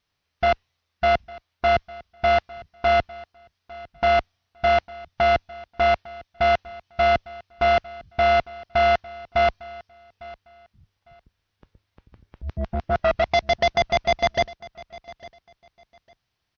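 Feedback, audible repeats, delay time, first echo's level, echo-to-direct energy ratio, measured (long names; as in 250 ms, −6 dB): 22%, 2, 853 ms, −20.5 dB, −20.5 dB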